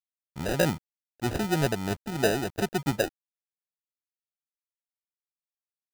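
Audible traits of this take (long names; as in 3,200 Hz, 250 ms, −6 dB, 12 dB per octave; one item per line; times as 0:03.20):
a quantiser's noise floor 8 bits, dither none
tremolo triangle 3.2 Hz, depth 50%
aliases and images of a low sample rate 1,100 Hz, jitter 0%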